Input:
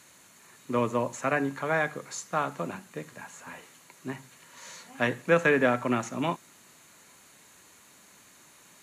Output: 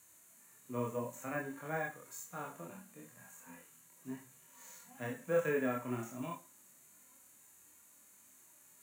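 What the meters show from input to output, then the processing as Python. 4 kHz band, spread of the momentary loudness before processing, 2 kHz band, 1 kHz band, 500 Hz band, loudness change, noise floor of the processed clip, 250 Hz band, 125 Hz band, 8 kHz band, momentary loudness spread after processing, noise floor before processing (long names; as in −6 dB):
−17.5 dB, 21 LU, −14.0 dB, −13.5 dB, −10.0 dB, −11.5 dB, −63 dBFS, −10.5 dB, −9.5 dB, −8.0 dB, 24 LU, −56 dBFS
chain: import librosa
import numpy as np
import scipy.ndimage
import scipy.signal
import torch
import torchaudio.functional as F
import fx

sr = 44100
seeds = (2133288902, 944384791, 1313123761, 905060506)

y = fx.high_shelf_res(x, sr, hz=6300.0, db=10.5, q=1.5)
y = fx.rev_schroeder(y, sr, rt60_s=0.3, comb_ms=31, drr_db=17.0)
y = fx.chorus_voices(y, sr, voices=4, hz=0.89, base_ms=25, depth_ms=2.3, mix_pct=50)
y = fx.hpss(y, sr, part='percussive', gain_db=-16)
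y = np.repeat(scipy.signal.resample_poly(y, 1, 2), 2)[:len(y)]
y = y * librosa.db_to_amplitude(-5.5)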